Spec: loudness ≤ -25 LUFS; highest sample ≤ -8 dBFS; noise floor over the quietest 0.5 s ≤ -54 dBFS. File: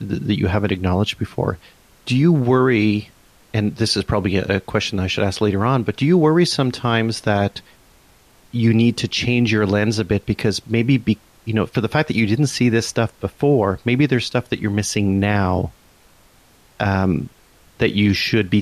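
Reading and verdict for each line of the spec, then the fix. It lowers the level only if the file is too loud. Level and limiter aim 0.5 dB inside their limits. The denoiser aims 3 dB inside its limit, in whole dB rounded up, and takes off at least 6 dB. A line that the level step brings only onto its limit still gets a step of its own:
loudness -19.0 LUFS: fail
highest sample -5.5 dBFS: fail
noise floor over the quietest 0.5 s -52 dBFS: fail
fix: trim -6.5 dB

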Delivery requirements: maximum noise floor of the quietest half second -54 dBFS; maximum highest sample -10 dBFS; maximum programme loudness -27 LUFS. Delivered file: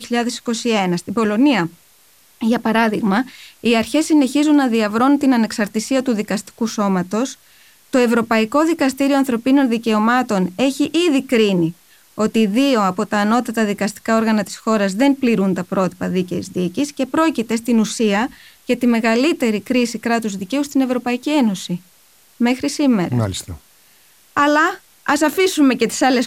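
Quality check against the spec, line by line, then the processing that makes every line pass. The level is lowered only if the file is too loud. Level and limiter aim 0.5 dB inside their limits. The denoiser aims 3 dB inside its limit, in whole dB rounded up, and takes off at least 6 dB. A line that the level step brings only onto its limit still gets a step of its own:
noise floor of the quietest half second -51 dBFS: fail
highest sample -3.5 dBFS: fail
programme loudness -17.5 LUFS: fail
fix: trim -10 dB

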